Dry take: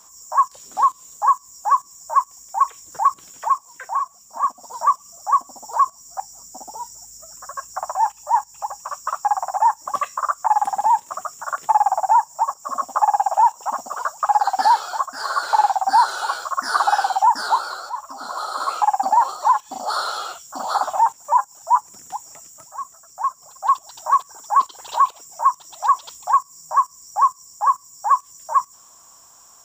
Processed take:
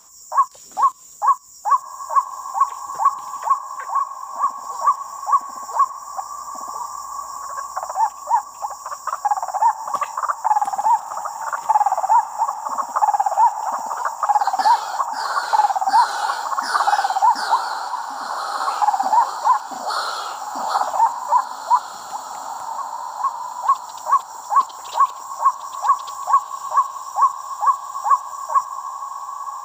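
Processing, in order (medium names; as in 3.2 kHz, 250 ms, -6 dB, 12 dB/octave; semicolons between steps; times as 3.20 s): echo that smears into a reverb 1801 ms, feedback 44%, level -10 dB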